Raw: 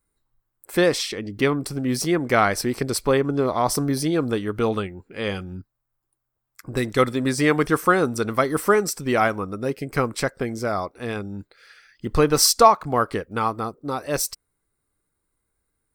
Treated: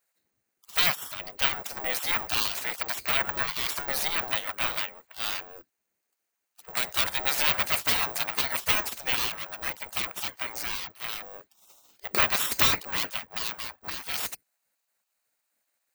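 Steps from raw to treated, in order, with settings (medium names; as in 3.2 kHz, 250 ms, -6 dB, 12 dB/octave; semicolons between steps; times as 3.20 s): comb filter that takes the minimum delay 0.45 ms; spectral gate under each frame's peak -20 dB weak; careless resampling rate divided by 2×, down filtered, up zero stuff; trim +6 dB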